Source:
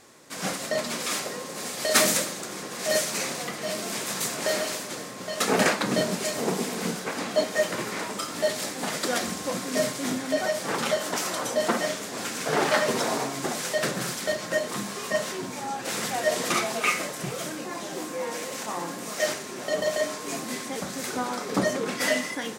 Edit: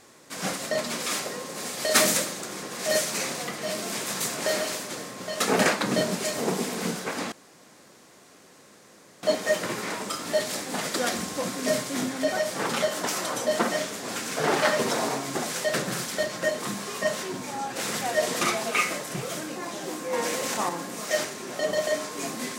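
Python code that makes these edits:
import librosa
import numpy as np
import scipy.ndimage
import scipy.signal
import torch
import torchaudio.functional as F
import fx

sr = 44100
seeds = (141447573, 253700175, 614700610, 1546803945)

y = fx.edit(x, sr, fx.insert_room_tone(at_s=7.32, length_s=1.91),
    fx.clip_gain(start_s=18.22, length_s=0.56, db=5.0), tone=tone)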